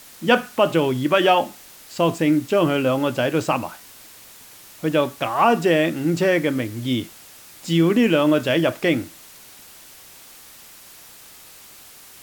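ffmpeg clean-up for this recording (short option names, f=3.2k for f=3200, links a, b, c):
-af "afwtdn=0.0063"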